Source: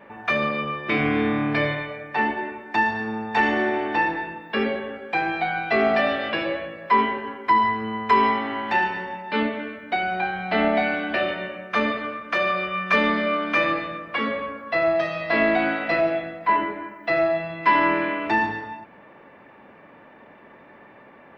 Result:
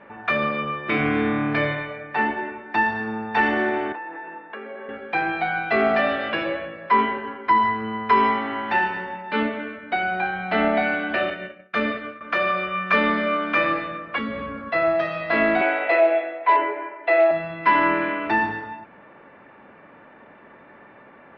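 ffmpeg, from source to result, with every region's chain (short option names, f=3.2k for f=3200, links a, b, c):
-filter_complex "[0:a]asettb=1/sr,asplit=3[a][b][c];[a]atrim=end=3.924[d];[b]atrim=start=3.92:end=4.89,asetpts=PTS-STARTPTS,afade=t=in:d=0.004:c=qsin,afade=t=out:st=0.966:d=0.004:c=qsin,acompressor=threshold=-30dB:ratio=6:attack=3.2:release=140:knee=1:detection=peak,highpass=360,lowpass=2k[e];[c]atrim=start=4.886[f];[d][e]acrossfade=d=0.004:c1=hsin:c2=qsin[g];[g][f]acrossfade=d=0.004:c1=qsin:c2=hsin,asettb=1/sr,asplit=3[h][i][j];[h]atrim=end=11.304[k];[i]atrim=start=11.3:end=12.21,asetpts=PTS-STARTPTS,afade=t=in:d=0.004:c=qsin,afade=t=out:st=0.906:d=0.004:c=qsin,equalizer=f=970:w=2.8:g=-9.5,agate=range=-33dB:threshold=-29dB:ratio=3:release=100:detection=peak[l];[j]atrim=start=12.206[m];[k][l]acrossfade=d=0.004:c1=hsin:c2=qsin[n];[n][m]acrossfade=d=0.004:c1=qsin:c2=hsin,asettb=1/sr,asplit=3[o][p][q];[o]atrim=end=14.184[r];[p]atrim=start=14.18:end=14.7,asetpts=PTS-STARTPTS,afade=t=in:d=0.004:c=qsin,afade=t=out:st=0.516:d=0.004:c=qsin,bass=f=250:g=14,treble=f=4k:g=11,acompressor=threshold=-28dB:ratio=2.5:attack=3.2:release=140:knee=1:detection=peak,bandreject=f=5.4k:w=7.6[s];[q]atrim=start=14.696[t];[r][s]acrossfade=d=0.004:c1=hsin:c2=qsin[u];[u][t]acrossfade=d=0.004:c1=qsin:c2=hsin,asettb=1/sr,asplit=3[v][w][x];[v]atrim=end=15.614[y];[w]atrim=start=15.61:end=17.31,asetpts=PTS-STARTPTS,afade=t=in:d=0.004:c=qsin,afade=t=out:st=1.696:d=0.004:c=qsin,volume=14dB,asoftclip=hard,volume=-14dB,highpass=f=370:w=0.5412,highpass=f=370:w=1.3066,equalizer=f=390:t=q:w=4:g=8,equalizer=f=600:t=q:w=4:g=6,equalizer=f=880:t=q:w=4:g=6,equalizer=f=1.3k:t=q:w=4:g=-5,equalizer=f=2.3k:t=q:w=4:g=6,lowpass=f=4.2k:w=0.5412,lowpass=f=4.2k:w=1.3066[z];[x]atrim=start=17.306[aa];[y][z]acrossfade=d=0.004:c1=hsin:c2=qsin[ab];[ab][aa]acrossfade=d=0.004:c1=qsin:c2=hsin,lowpass=3.9k,equalizer=f=1.4k:w=4.8:g=5"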